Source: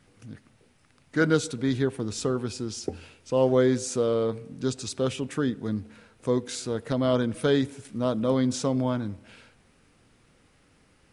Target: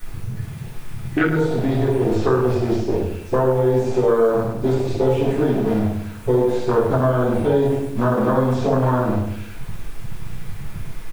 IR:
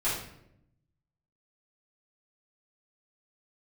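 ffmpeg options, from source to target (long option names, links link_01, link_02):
-filter_complex "[0:a]aeval=exprs='val(0)+0.5*0.0531*sgn(val(0))':channel_layout=same,agate=range=-13dB:threshold=-28dB:ratio=16:detection=peak,asplit=2[link_01][link_02];[link_02]acrusher=bits=5:dc=4:mix=0:aa=0.000001,volume=-7dB[link_03];[link_01][link_03]amix=inputs=2:normalize=0,alimiter=limit=-14.5dB:level=0:latency=1:release=329[link_04];[1:a]atrim=start_sample=2205,afade=type=out:start_time=0.19:duration=0.01,atrim=end_sample=8820[link_05];[link_04][link_05]afir=irnorm=-1:irlink=0,afwtdn=0.126,asplit=2[link_06][link_07];[link_07]adelay=100,lowpass=frequency=2000:poles=1,volume=-8dB,asplit=2[link_08][link_09];[link_09]adelay=100,lowpass=frequency=2000:poles=1,volume=0.34,asplit=2[link_10][link_11];[link_11]adelay=100,lowpass=frequency=2000:poles=1,volume=0.34,asplit=2[link_12][link_13];[link_13]adelay=100,lowpass=frequency=2000:poles=1,volume=0.34[link_14];[link_06][link_08][link_10][link_12][link_14]amix=inputs=5:normalize=0,acrossover=split=570|5500[link_15][link_16][link_17];[link_15]acompressor=threshold=-28dB:ratio=4[link_18];[link_16]acompressor=threshold=-28dB:ratio=4[link_19];[link_17]acompressor=threshold=-53dB:ratio=4[link_20];[link_18][link_19][link_20]amix=inputs=3:normalize=0,highshelf=frequency=8000:gain=11,acrossover=split=3500[link_21][link_22];[link_22]acompressor=threshold=-55dB:ratio=4:attack=1:release=60[link_23];[link_21][link_23]amix=inputs=2:normalize=0,volume=7.5dB"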